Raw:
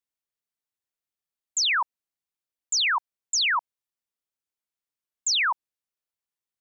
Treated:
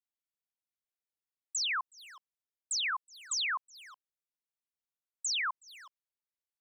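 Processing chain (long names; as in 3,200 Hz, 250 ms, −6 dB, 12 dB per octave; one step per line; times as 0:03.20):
pitch shifter +1.5 semitones
far-end echo of a speakerphone 370 ms, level −13 dB
level −9 dB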